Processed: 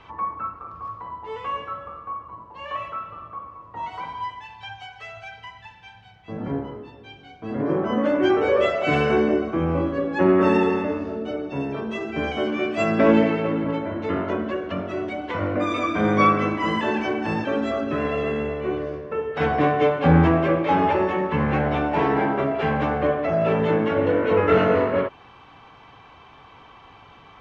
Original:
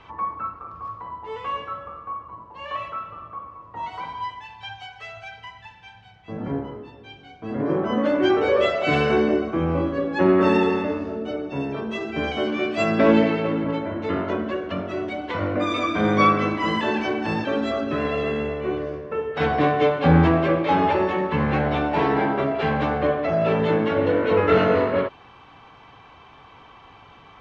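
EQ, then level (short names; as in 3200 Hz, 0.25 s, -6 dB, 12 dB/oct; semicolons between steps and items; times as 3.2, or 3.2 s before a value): dynamic EQ 4100 Hz, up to -7 dB, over -50 dBFS, Q 2.3; 0.0 dB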